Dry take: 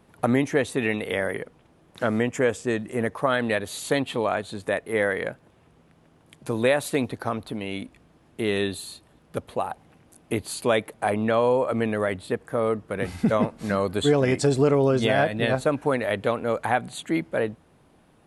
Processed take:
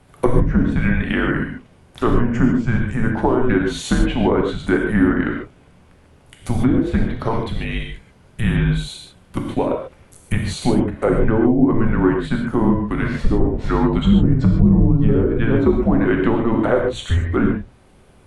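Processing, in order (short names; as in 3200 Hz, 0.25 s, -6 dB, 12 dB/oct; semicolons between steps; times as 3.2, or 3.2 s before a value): treble ducked by the level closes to 510 Hz, closed at -16.5 dBFS; non-linear reverb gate 0.17 s flat, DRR 0.5 dB; frequency shift -240 Hz; gain +6 dB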